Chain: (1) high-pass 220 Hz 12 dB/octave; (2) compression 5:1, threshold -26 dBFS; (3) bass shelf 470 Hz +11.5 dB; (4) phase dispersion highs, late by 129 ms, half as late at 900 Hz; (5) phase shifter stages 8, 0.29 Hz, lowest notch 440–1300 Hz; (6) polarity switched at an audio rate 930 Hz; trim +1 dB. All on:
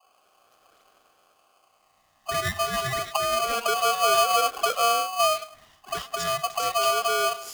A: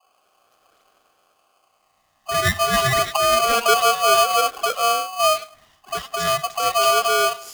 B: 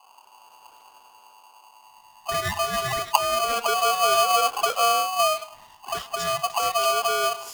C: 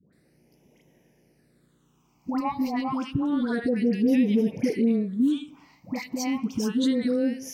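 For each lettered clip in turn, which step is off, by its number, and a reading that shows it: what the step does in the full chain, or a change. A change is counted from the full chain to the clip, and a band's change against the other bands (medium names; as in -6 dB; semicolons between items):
2, momentary loudness spread change -2 LU; 1, 125 Hz band -1.5 dB; 6, 250 Hz band +34.5 dB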